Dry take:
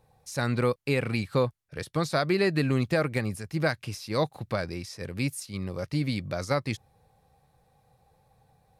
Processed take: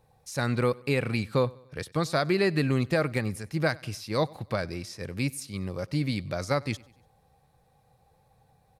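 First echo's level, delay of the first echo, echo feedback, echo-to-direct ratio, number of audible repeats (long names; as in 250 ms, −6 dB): −24.0 dB, 96 ms, 49%, −23.0 dB, 2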